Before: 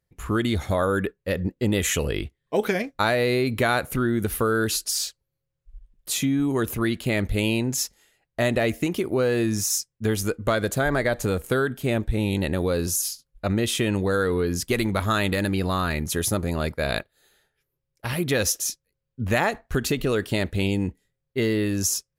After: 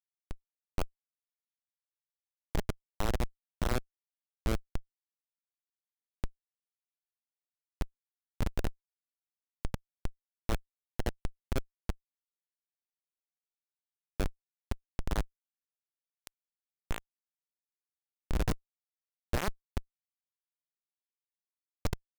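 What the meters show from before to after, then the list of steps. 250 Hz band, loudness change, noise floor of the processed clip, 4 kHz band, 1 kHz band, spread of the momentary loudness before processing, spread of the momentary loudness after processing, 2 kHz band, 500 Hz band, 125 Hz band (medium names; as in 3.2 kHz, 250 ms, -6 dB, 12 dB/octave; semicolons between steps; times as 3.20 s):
-19.5 dB, -15.0 dB, under -85 dBFS, -19.0 dB, -16.0 dB, 5 LU, 12 LU, -20.5 dB, -20.5 dB, -14.0 dB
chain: power-law waveshaper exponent 3; Schmitt trigger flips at -25.5 dBFS; trim +14 dB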